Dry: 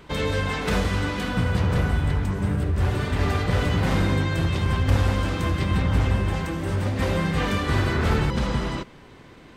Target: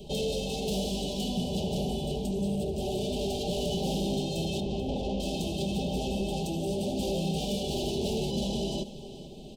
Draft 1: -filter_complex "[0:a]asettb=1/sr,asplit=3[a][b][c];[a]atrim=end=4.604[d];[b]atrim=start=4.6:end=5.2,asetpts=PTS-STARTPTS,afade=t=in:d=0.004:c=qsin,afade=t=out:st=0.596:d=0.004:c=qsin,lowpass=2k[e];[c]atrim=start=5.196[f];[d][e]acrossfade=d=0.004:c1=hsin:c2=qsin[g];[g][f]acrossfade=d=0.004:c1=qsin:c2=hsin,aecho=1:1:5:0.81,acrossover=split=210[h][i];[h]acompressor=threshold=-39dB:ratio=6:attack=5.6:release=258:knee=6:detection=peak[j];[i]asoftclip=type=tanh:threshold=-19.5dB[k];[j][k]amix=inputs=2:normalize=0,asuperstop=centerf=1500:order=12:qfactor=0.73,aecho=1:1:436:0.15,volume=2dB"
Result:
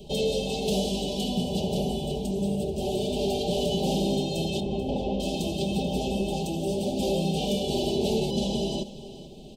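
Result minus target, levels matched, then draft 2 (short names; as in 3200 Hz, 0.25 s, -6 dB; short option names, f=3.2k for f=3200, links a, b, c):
soft clip: distortion -9 dB
-filter_complex "[0:a]asettb=1/sr,asplit=3[a][b][c];[a]atrim=end=4.604[d];[b]atrim=start=4.6:end=5.2,asetpts=PTS-STARTPTS,afade=t=in:d=0.004:c=qsin,afade=t=out:st=0.596:d=0.004:c=qsin,lowpass=2k[e];[c]atrim=start=5.196[f];[d][e]acrossfade=d=0.004:c1=hsin:c2=qsin[g];[g][f]acrossfade=d=0.004:c1=qsin:c2=hsin,aecho=1:1:5:0.81,acrossover=split=210[h][i];[h]acompressor=threshold=-39dB:ratio=6:attack=5.6:release=258:knee=6:detection=peak[j];[i]asoftclip=type=tanh:threshold=-29dB[k];[j][k]amix=inputs=2:normalize=0,asuperstop=centerf=1500:order=12:qfactor=0.73,aecho=1:1:436:0.15,volume=2dB"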